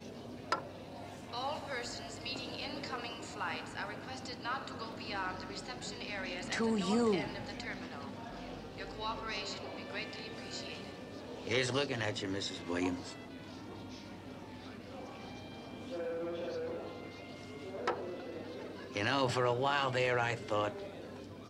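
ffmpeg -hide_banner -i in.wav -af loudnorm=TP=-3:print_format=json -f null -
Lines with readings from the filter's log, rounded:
"input_i" : "-37.1",
"input_tp" : "-16.6",
"input_lra" : "7.7",
"input_thresh" : "-47.6",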